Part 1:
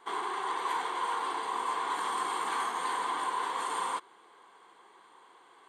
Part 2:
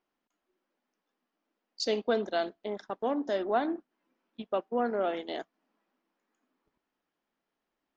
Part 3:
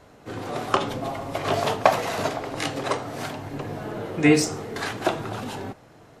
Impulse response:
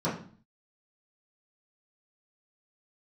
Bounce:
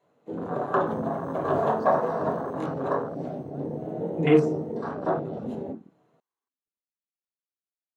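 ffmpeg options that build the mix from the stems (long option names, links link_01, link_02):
-filter_complex "[0:a]acrusher=samples=6:mix=1:aa=0.000001,adelay=800,volume=-10.5dB,afade=type=out:start_time=2.36:duration=0.4:silence=0.298538[link_01];[1:a]volume=-11.5dB,asplit=2[link_02][link_03];[2:a]acontrast=82,lowshelf=frequency=170:gain=-11.5,volume=-12dB,asplit=2[link_04][link_05];[link_05]volume=-7dB[link_06];[link_03]apad=whole_len=273432[link_07];[link_04][link_07]sidechaincompress=threshold=-52dB:ratio=8:attack=7.4:release=120[link_08];[3:a]atrim=start_sample=2205[link_09];[link_06][link_09]afir=irnorm=-1:irlink=0[link_10];[link_01][link_02][link_08][link_10]amix=inputs=4:normalize=0,afwtdn=0.0398"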